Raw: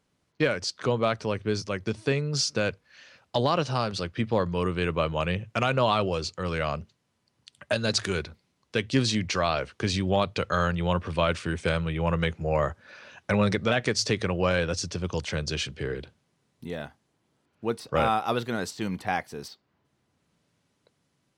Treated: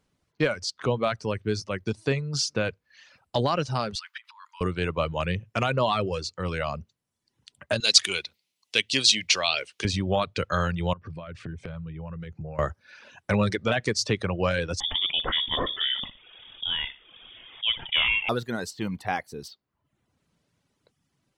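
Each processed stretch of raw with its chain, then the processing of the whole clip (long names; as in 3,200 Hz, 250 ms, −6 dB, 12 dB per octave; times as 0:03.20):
0:03.95–0:04.61: compressor whose output falls as the input rises −35 dBFS + linear-phase brick-wall high-pass 860 Hz
0:07.80–0:09.85: high-pass filter 590 Hz 6 dB per octave + high shelf with overshoot 2,000 Hz +9 dB, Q 1.5
0:10.93–0:12.59: low-pass filter 2,000 Hz 6 dB per octave + parametric band 130 Hz +11.5 dB 0.94 octaves + downward compressor 8 to 1, threshold −34 dBFS
0:14.80–0:18.29: flutter between parallel walls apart 10.1 metres, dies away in 0.27 s + voice inversion scrambler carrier 3,500 Hz + envelope flattener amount 50%
whole clip: reverb reduction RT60 0.71 s; low-shelf EQ 66 Hz +8 dB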